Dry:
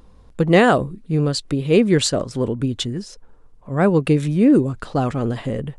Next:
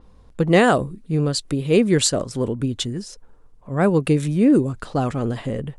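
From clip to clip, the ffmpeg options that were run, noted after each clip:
ffmpeg -i in.wav -af "adynamicequalizer=threshold=0.0112:dfrequency=6100:dqfactor=0.7:tfrequency=6100:tqfactor=0.7:attack=5:release=100:ratio=0.375:range=3.5:mode=boostabove:tftype=highshelf,volume=-1.5dB" out.wav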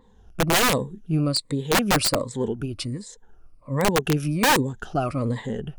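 ffmpeg -i in.wav -af "afftfilt=real='re*pow(10,15/40*sin(2*PI*(1*log(max(b,1)*sr/1024/100)/log(2)-(-1.3)*(pts-256)/sr)))':imag='im*pow(10,15/40*sin(2*PI*(1*log(max(b,1)*sr/1024/100)/log(2)-(-1.3)*(pts-256)/sr)))':win_size=1024:overlap=0.75,aeval=exprs='(mod(2.51*val(0)+1,2)-1)/2.51':channel_layout=same,volume=-5dB" out.wav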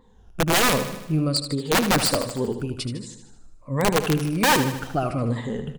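ffmpeg -i in.wav -af "aecho=1:1:77|154|231|308|385|462|539:0.316|0.18|0.103|0.0586|0.0334|0.019|0.0108" out.wav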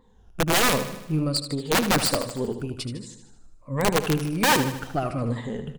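ffmpeg -i in.wav -af "aeval=exprs='0.316*(cos(1*acos(clip(val(0)/0.316,-1,1)))-cos(1*PI/2))+0.0282*(cos(3*acos(clip(val(0)/0.316,-1,1)))-cos(3*PI/2))+0.00708*(cos(6*acos(clip(val(0)/0.316,-1,1)))-cos(6*PI/2))':channel_layout=same" out.wav

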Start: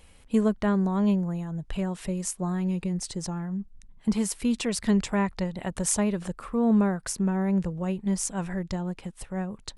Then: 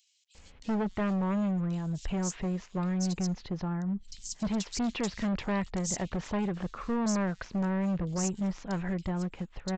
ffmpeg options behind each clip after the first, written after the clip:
ffmpeg -i in.wav -filter_complex "[0:a]aresample=16000,volume=27dB,asoftclip=hard,volume=-27dB,aresample=44100,acrossover=split=3700[link_01][link_02];[link_01]adelay=350[link_03];[link_03][link_02]amix=inputs=2:normalize=0" out.wav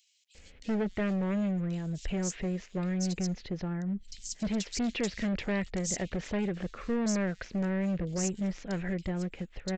ffmpeg -i in.wav -af "equalizer=frequency=125:width_type=o:width=1:gain=-3,equalizer=frequency=500:width_type=o:width=1:gain=4,equalizer=frequency=1000:width_type=o:width=1:gain=-10,equalizer=frequency=2000:width_type=o:width=1:gain=5" out.wav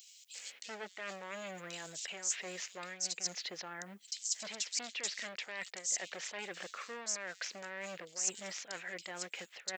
ffmpeg -i in.wav -af "highpass=830,areverse,acompressor=threshold=-47dB:ratio=6,areverse,crystalizer=i=2.5:c=0,volume=5dB" out.wav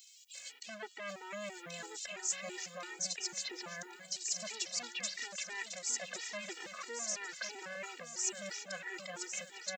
ffmpeg -i in.wav -af "aecho=1:1:1102|2204|3306|4408:0.422|0.16|0.0609|0.0231,afftfilt=real='re*gt(sin(2*PI*3*pts/sr)*(1-2*mod(floor(b*sr/1024/250),2)),0)':imag='im*gt(sin(2*PI*3*pts/sr)*(1-2*mod(floor(b*sr/1024/250),2)),0)':win_size=1024:overlap=0.75,volume=2.5dB" out.wav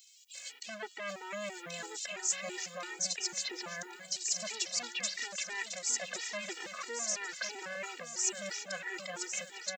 ffmpeg -i in.wav -af "lowshelf=frequency=110:gain=-6,dynaudnorm=framelen=220:gausssize=3:maxgain=5dB,volume=-1.5dB" out.wav

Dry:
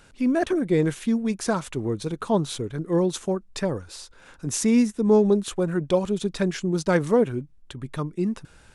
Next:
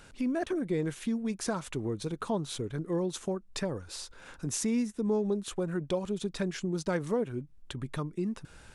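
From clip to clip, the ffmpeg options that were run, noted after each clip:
ffmpeg -i in.wav -af "acompressor=threshold=-35dB:ratio=2" out.wav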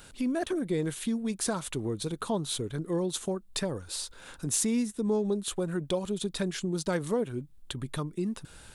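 ffmpeg -i in.wav -af "aexciter=amount=1.2:drive=8:freq=3200,volume=1dB" out.wav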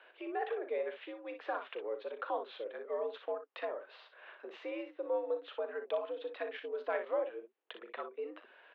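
ffmpeg -i in.wav -af "aecho=1:1:37|60:0.266|0.355,highpass=frequency=350:width_type=q:width=0.5412,highpass=frequency=350:width_type=q:width=1.307,lowpass=frequency=2800:width_type=q:width=0.5176,lowpass=frequency=2800:width_type=q:width=0.7071,lowpass=frequency=2800:width_type=q:width=1.932,afreqshift=87,volume=-4dB" out.wav

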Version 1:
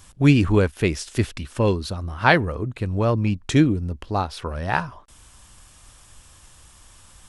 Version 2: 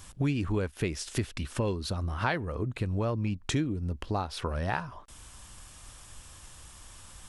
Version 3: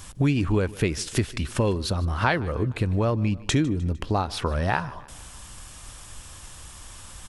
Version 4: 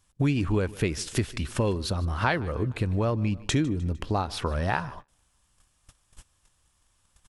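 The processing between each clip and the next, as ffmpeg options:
ffmpeg -i in.wav -af "acompressor=threshold=-28dB:ratio=4" out.wav
ffmpeg -i in.wav -af "aecho=1:1:152|304|456|608:0.0891|0.0481|0.026|0.014,volume=6.5dB" out.wav
ffmpeg -i in.wav -af "agate=range=-23dB:threshold=-37dB:ratio=16:detection=peak,volume=-2.5dB" out.wav

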